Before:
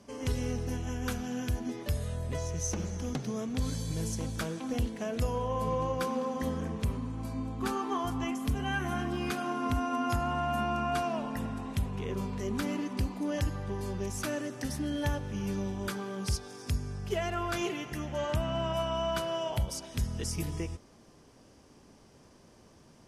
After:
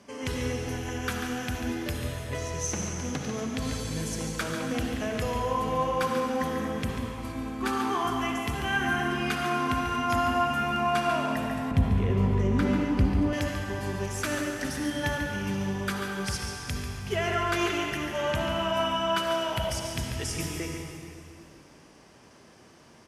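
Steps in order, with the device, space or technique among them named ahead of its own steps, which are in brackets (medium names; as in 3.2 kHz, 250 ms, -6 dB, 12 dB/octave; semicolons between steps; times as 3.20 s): PA in a hall (high-pass 120 Hz 6 dB/octave; peaking EQ 2 kHz +6 dB 1.5 oct; delay 142 ms -9 dB; reverberation RT60 2.4 s, pre-delay 53 ms, DRR 2.5 dB); 11.71–13.33 s: tilt EQ -3 dB/octave; trim +1.5 dB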